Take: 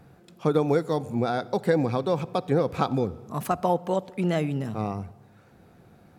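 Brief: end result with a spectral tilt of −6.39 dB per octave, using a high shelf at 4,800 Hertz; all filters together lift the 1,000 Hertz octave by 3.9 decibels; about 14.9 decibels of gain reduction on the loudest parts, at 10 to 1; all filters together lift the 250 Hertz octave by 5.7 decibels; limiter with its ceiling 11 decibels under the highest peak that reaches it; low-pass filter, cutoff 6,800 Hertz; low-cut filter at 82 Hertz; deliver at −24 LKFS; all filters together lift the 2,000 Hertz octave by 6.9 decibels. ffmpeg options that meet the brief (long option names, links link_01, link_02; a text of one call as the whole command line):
ffmpeg -i in.wav -af "highpass=82,lowpass=6800,equalizer=frequency=250:width_type=o:gain=7.5,equalizer=frequency=1000:width_type=o:gain=3,equalizer=frequency=2000:width_type=o:gain=7,highshelf=frequency=4800:gain=6,acompressor=threshold=-29dB:ratio=10,volume=14dB,alimiter=limit=-13.5dB:level=0:latency=1" out.wav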